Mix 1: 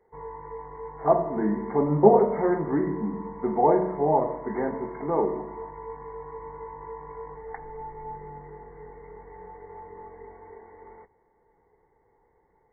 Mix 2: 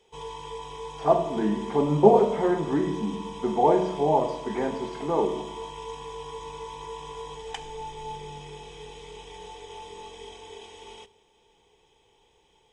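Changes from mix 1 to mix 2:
background: send on; master: remove brick-wall FIR low-pass 2.2 kHz

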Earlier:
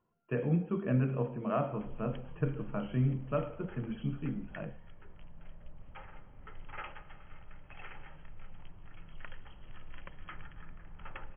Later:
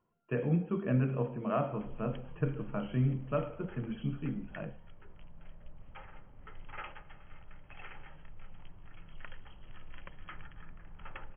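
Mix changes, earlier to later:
background: send -7.0 dB; master: remove distance through air 68 m

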